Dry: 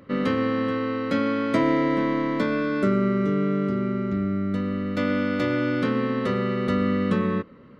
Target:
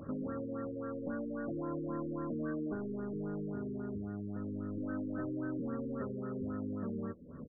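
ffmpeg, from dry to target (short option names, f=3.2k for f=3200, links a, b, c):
-filter_complex "[0:a]lowshelf=f=160:g=8,acompressor=threshold=-39dB:ratio=3,asoftclip=type=tanh:threshold=-31dB,asplit=2[a][b];[b]adelay=13,volume=-8dB[c];[a][c]amix=inputs=2:normalize=0,asetrate=45938,aresample=44100,afftfilt=real='re*lt(b*sr/1024,500*pow(1900/500,0.5+0.5*sin(2*PI*3.7*pts/sr)))':imag='im*lt(b*sr/1024,500*pow(1900/500,0.5+0.5*sin(2*PI*3.7*pts/sr)))':win_size=1024:overlap=0.75"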